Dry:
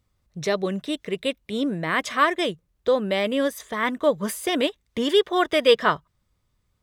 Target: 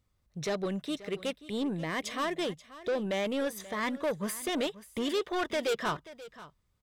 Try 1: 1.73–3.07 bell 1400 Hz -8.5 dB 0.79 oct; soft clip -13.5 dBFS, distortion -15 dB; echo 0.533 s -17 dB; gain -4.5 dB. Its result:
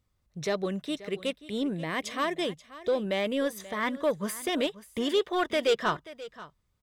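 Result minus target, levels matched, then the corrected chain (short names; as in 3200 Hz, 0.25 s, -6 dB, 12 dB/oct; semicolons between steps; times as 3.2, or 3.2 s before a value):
soft clip: distortion -7 dB
1.73–3.07 bell 1400 Hz -8.5 dB 0.79 oct; soft clip -21.5 dBFS, distortion -8 dB; echo 0.533 s -17 dB; gain -4.5 dB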